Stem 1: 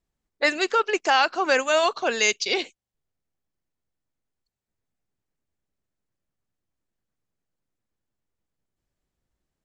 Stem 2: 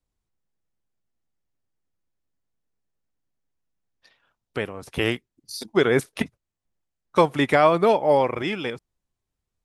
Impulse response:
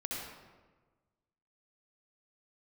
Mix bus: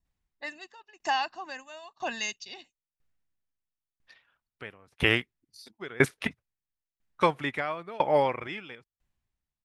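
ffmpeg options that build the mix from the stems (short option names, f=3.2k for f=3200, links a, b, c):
-filter_complex "[0:a]aecho=1:1:1.1:0.77,volume=-7.5dB[a];[1:a]equalizer=f=2k:w=0.55:g=11,adelay=50,volume=-4.5dB[b];[a][b]amix=inputs=2:normalize=0,lowshelf=f=210:g=6.5,aeval=exprs='val(0)*pow(10,-25*if(lt(mod(1*n/s,1),2*abs(1)/1000),1-mod(1*n/s,1)/(2*abs(1)/1000),(mod(1*n/s,1)-2*abs(1)/1000)/(1-2*abs(1)/1000))/20)':c=same"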